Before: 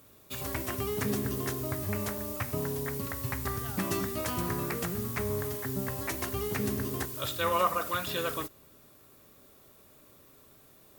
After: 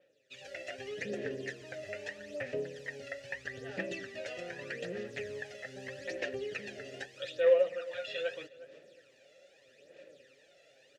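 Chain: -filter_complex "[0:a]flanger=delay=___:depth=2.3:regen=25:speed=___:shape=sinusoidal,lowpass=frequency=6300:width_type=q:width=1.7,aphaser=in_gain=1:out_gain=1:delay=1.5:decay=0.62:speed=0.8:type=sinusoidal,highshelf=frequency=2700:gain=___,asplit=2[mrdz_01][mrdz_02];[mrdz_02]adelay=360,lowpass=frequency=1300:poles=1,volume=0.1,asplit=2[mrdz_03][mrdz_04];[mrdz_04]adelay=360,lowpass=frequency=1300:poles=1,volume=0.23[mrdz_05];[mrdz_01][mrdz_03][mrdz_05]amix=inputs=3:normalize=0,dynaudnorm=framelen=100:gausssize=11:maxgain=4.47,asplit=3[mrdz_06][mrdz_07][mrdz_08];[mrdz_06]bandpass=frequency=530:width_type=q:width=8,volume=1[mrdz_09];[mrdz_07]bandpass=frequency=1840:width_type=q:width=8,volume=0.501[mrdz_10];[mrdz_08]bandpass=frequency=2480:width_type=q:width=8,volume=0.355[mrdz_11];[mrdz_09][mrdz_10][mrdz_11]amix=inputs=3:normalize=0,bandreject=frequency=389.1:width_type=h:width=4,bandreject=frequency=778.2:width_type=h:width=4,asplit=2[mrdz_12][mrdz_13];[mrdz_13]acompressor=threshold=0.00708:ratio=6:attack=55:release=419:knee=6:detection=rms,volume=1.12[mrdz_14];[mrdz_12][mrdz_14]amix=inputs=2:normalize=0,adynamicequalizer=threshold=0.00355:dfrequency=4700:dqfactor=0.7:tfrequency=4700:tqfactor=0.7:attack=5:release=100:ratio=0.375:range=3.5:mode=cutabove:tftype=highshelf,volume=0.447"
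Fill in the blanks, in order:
5.5, 1.8, 9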